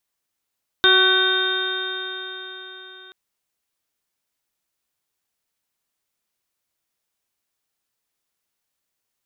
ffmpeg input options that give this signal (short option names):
-f lavfi -i "aevalsrc='0.112*pow(10,-3*t/4.4)*sin(2*PI*372.45*t)+0.0335*pow(10,-3*t/4.4)*sin(2*PI*747.56*t)+0.0668*pow(10,-3*t/4.4)*sin(2*PI*1127.99*t)+0.178*pow(10,-3*t/4.4)*sin(2*PI*1516.3*t)+0.0282*pow(10,-3*t/4.4)*sin(2*PI*1914.99*t)+0.0224*pow(10,-3*t/4.4)*sin(2*PI*2326.43*t)+0.0178*pow(10,-3*t/4.4)*sin(2*PI*2752.86*t)+0.0562*pow(10,-3*t/4.4)*sin(2*PI*3196.4*t)+0.2*pow(10,-3*t/4.4)*sin(2*PI*3658.98*t)':d=2.28:s=44100"